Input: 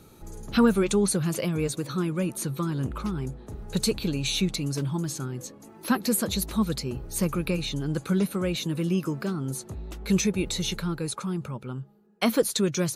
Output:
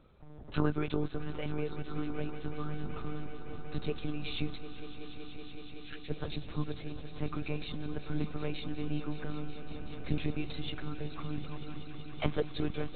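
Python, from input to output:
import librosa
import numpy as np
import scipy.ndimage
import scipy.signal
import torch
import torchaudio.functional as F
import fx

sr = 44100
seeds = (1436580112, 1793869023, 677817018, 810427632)

y = fx.cheby2_bandstop(x, sr, low_hz=200.0, high_hz=760.0, order=4, stop_db=60, at=(4.57, 6.1))
y = fx.lpc_monotone(y, sr, seeds[0], pitch_hz=150.0, order=10)
y = fx.echo_swell(y, sr, ms=188, loudest=5, wet_db=-15.5)
y = F.gain(torch.from_numpy(y), -9.0).numpy()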